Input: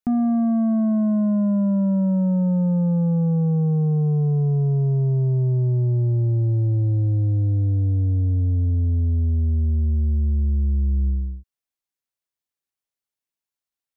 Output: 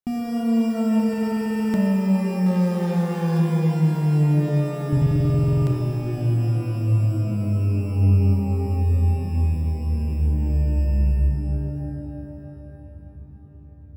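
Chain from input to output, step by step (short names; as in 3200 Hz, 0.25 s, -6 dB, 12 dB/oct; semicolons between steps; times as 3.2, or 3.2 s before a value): 2.46–3.4 bell 500 Hz +8.5 dB 2.7 oct; in parallel at -6.5 dB: sample-and-hold 17×; on the sum: hard clip -14 dBFS, distortion -16 dB; darkening echo 0.98 s, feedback 77%, low-pass 850 Hz, level -23 dB; stuck buffer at 0.95/4.88, samples 2048, times 16; shimmer reverb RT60 3.2 s, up +12 st, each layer -8 dB, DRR 1.5 dB; gain -7 dB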